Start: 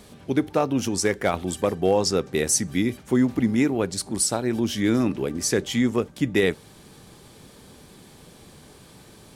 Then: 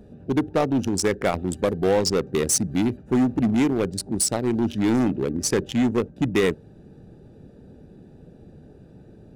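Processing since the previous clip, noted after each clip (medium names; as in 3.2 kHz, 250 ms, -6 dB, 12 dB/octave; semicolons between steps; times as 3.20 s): local Wiener filter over 41 samples; in parallel at -5 dB: wavefolder -22 dBFS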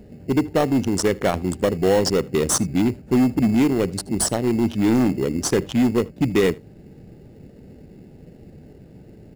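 in parallel at -8 dB: sample-rate reducer 2.4 kHz, jitter 0%; on the sum: delay 78 ms -24 dB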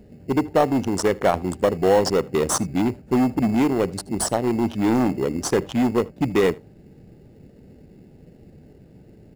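dynamic bell 860 Hz, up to +8 dB, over -35 dBFS, Q 0.77; trim -3.5 dB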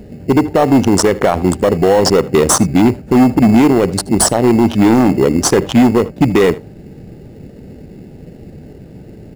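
loudness maximiser +14 dB; trim -1 dB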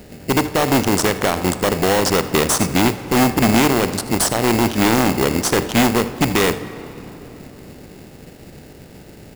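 spectral contrast reduction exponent 0.61; on a send at -13 dB: reverberation RT60 3.7 s, pre-delay 18 ms; on the sum: trim -6 dB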